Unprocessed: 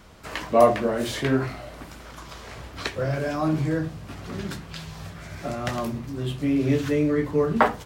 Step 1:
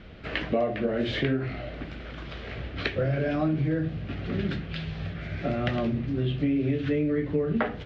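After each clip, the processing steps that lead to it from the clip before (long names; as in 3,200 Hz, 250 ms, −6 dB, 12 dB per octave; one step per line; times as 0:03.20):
low-pass filter 3,400 Hz 24 dB per octave
parametric band 990 Hz −14.5 dB 0.69 octaves
downward compressor 12 to 1, threshold −27 dBFS, peak gain reduction 13.5 dB
level +5 dB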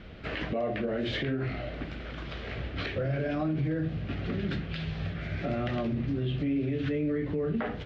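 brickwall limiter −22.5 dBFS, peak gain reduction 10 dB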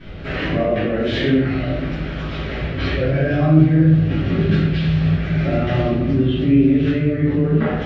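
convolution reverb RT60 1.0 s, pre-delay 3 ms, DRR −13.5 dB
level −3 dB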